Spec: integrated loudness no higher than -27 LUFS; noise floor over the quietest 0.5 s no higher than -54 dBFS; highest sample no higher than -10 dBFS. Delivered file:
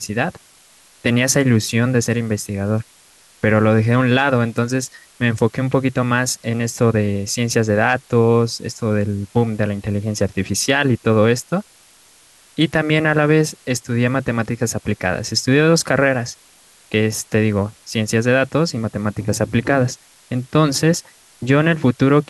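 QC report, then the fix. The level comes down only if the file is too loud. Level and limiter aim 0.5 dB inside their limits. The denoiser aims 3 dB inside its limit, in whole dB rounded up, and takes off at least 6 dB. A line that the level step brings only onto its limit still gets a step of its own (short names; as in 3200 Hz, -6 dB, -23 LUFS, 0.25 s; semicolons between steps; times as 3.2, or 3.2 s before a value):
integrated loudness -18.0 LUFS: fail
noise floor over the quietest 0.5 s -50 dBFS: fail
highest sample -3.5 dBFS: fail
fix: gain -9.5 dB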